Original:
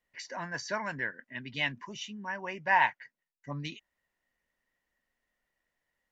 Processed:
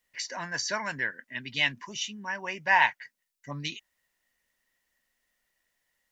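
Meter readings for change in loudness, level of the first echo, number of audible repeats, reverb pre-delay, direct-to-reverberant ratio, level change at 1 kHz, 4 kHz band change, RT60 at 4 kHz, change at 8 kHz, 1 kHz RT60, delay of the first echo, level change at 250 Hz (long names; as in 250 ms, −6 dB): +4.0 dB, no echo audible, no echo audible, no reverb audible, no reverb audible, +1.5 dB, +7.5 dB, no reverb audible, can't be measured, no reverb audible, no echo audible, 0.0 dB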